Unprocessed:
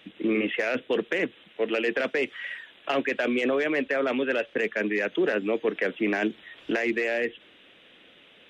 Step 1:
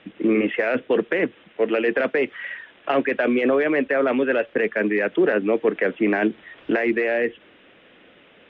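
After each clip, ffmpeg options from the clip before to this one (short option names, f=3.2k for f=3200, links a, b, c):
-af "lowpass=2k,volume=6dB"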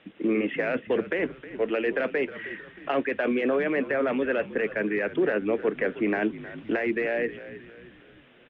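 -filter_complex "[0:a]asplit=5[a][b][c][d][e];[b]adelay=313,afreqshift=-55,volume=-15dB[f];[c]adelay=626,afreqshift=-110,volume=-21.9dB[g];[d]adelay=939,afreqshift=-165,volume=-28.9dB[h];[e]adelay=1252,afreqshift=-220,volume=-35.8dB[i];[a][f][g][h][i]amix=inputs=5:normalize=0,volume=-5.5dB"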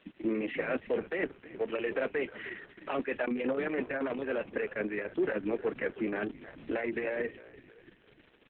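-af "volume=-5dB" -ar 48000 -c:a libopus -b:a 6k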